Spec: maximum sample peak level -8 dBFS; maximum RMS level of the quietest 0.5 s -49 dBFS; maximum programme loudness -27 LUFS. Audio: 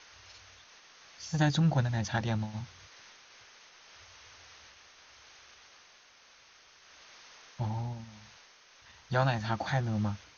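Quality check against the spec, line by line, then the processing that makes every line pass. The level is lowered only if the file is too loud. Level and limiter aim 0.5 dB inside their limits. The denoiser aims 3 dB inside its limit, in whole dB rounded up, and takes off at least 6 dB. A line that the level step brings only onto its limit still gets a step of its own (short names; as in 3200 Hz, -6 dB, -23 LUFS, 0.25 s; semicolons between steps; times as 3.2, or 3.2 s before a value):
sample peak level -14.0 dBFS: OK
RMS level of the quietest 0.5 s -59 dBFS: OK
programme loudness -31.5 LUFS: OK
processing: none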